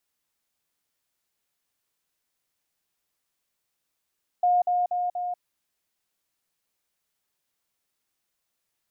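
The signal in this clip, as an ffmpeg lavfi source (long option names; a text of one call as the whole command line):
ffmpeg -f lavfi -i "aevalsrc='pow(10,(-17.5-3*floor(t/0.24))/20)*sin(2*PI*715*t)*clip(min(mod(t,0.24),0.19-mod(t,0.24))/0.005,0,1)':duration=0.96:sample_rate=44100" out.wav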